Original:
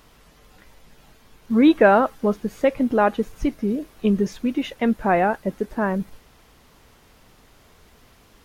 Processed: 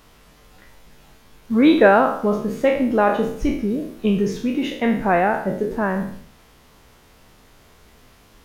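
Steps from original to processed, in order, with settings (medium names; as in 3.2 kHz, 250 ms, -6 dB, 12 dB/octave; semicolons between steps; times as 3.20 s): spectral sustain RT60 0.59 s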